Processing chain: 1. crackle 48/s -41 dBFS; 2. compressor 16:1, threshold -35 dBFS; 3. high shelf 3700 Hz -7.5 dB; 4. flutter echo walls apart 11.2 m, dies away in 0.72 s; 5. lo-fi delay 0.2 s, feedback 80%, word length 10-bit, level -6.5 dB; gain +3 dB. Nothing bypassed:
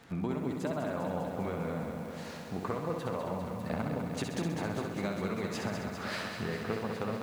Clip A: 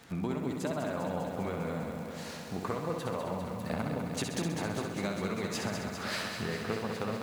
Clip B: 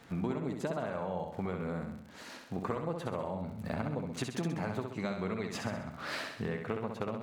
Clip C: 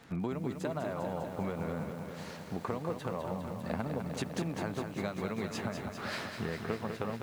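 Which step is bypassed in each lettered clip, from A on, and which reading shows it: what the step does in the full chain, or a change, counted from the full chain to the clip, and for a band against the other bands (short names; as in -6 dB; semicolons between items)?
3, 8 kHz band +5.5 dB; 5, crest factor change +1.5 dB; 4, loudness change -1.5 LU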